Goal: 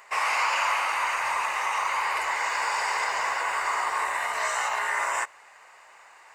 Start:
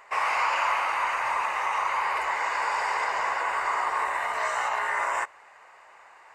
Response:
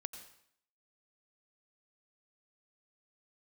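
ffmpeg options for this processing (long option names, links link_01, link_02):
-af "highshelf=frequency=2900:gain=11,volume=-2dB"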